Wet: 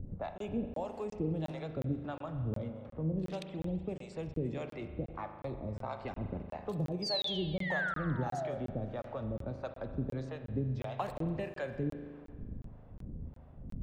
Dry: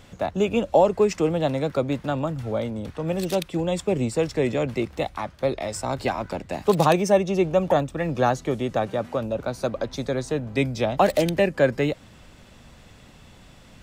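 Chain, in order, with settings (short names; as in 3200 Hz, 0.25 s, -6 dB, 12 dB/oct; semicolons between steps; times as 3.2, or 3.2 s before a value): low-pass opened by the level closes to 520 Hz, open at -17 dBFS; low shelf 230 Hz +11.5 dB; compressor 3:1, threshold -35 dBFS, peak gain reduction 18.5 dB; painted sound fall, 7.02–8.58, 520–5000 Hz -34 dBFS; harmonic tremolo 1.6 Hz, depth 100%, crossover 520 Hz; spring tank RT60 1.8 s, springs 38 ms, chirp 30 ms, DRR 7 dB; crackling interface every 0.36 s, samples 1024, zero, from 0.38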